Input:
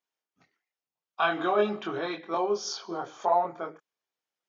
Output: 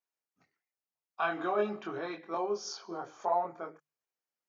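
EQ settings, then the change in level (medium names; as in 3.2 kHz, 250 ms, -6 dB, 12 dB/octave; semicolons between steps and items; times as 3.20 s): peaking EQ 3.4 kHz -8 dB 0.41 oct; hum notches 50/100/150 Hz; -5.5 dB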